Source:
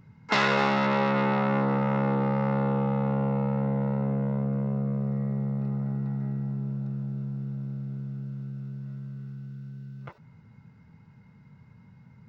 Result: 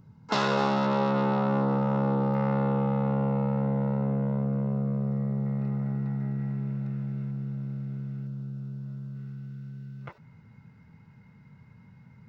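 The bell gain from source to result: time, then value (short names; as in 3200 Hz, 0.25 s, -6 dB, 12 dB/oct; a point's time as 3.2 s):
bell 2100 Hz 0.79 oct
-12 dB
from 2.34 s -3 dB
from 5.46 s +5 dB
from 6.39 s +11.5 dB
from 7.31 s +5.5 dB
from 8.27 s -6 dB
from 9.15 s +2.5 dB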